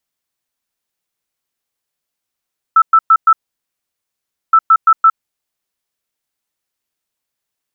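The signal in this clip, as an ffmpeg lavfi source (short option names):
-f lavfi -i "aevalsrc='0.631*sin(2*PI*1320*t)*clip(min(mod(mod(t,1.77),0.17),0.06-mod(mod(t,1.77),0.17))/0.005,0,1)*lt(mod(t,1.77),0.68)':d=3.54:s=44100"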